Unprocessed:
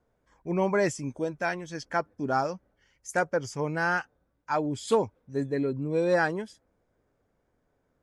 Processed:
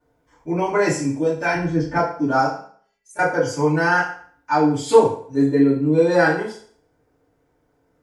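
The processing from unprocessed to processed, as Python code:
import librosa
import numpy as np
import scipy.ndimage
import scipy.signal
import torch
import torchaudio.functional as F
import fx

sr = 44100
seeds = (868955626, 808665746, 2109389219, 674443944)

y = fx.tilt_eq(x, sr, slope=-4.0, at=(1.54, 1.96))
y = fx.stiff_resonator(y, sr, f0_hz=200.0, decay_s=0.32, stiffness=0.008, at=(2.46, 3.19))
y = fx.rev_fdn(y, sr, rt60_s=0.52, lf_ratio=0.8, hf_ratio=0.9, size_ms=20.0, drr_db=-10.0)
y = F.gain(torch.from_numpy(y), -2.0).numpy()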